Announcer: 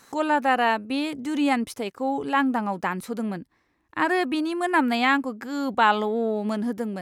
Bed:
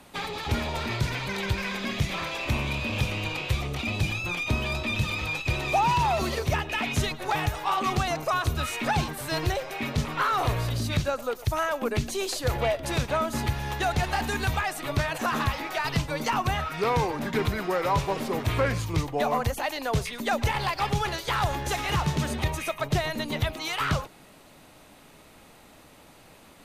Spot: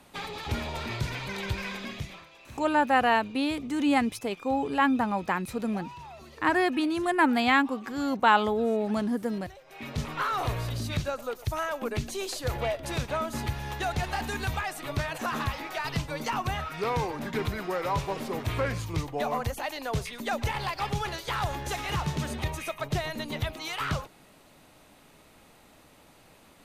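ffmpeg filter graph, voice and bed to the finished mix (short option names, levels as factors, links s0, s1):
-filter_complex "[0:a]adelay=2450,volume=0.841[s0];[1:a]volume=4.47,afade=t=out:st=1.68:d=0.58:silence=0.141254,afade=t=in:st=9.64:d=0.4:silence=0.141254[s1];[s0][s1]amix=inputs=2:normalize=0"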